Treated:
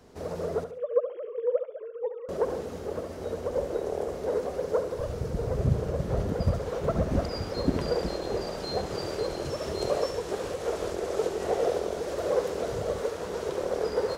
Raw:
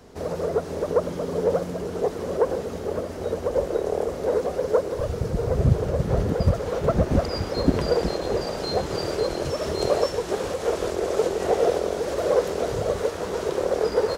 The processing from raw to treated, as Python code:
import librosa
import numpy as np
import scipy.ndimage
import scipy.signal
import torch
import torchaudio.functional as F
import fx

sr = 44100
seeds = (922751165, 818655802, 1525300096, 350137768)

p1 = fx.sine_speech(x, sr, at=(0.64, 2.29))
p2 = p1 + fx.echo_feedback(p1, sr, ms=70, feedback_pct=34, wet_db=-10.0, dry=0)
y = p2 * 10.0 ** (-6.0 / 20.0)